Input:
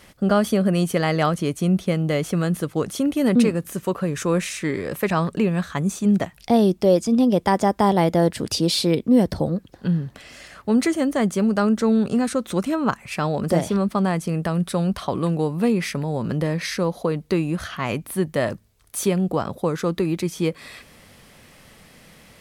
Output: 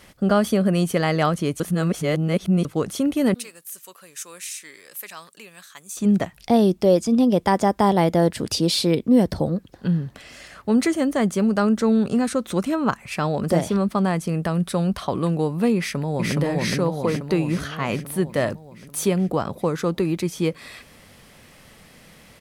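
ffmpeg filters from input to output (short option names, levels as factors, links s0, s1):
-filter_complex "[0:a]asettb=1/sr,asplit=3[s0][s1][s2];[s0]atrim=end=3.344[s3];[s1]atrim=start=3.34:end=5.97,asetpts=PTS-STARTPTS,afade=t=in:d=0.004:c=qsin,afade=t=out:st=2.626:d=0.004:c=qsin,aderivative[s4];[s2]atrim=start=5.966[s5];[s3][s4]acrossfade=d=0.004:c1=hsin:c2=qsin[s6];[s6][s5]acrossfade=d=0.004:c1=qsin:c2=hsin,asplit=2[s7][s8];[s8]afade=t=in:st=15.77:d=0.01,afade=t=out:st=16.36:d=0.01,aecho=0:1:420|840|1260|1680|2100|2520|2940|3360|3780|4200|4620:0.944061|0.61364|0.398866|0.259263|0.168521|0.109538|0.0712|0.04628|0.030082|0.0195533|0.0127096[s9];[s7][s9]amix=inputs=2:normalize=0,asplit=3[s10][s11][s12];[s10]atrim=end=1.602[s13];[s11]atrim=start=1.598:end=2.652,asetpts=PTS-STARTPTS,areverse[s14];[s12]atrim=start=2.648[s15];[s13][s14]acrossfade=d=0.004:c1=hsin:c2=hsin[s16];[s16][s15]acrossfade=d=0.004:c1=hsin:c2=hsin"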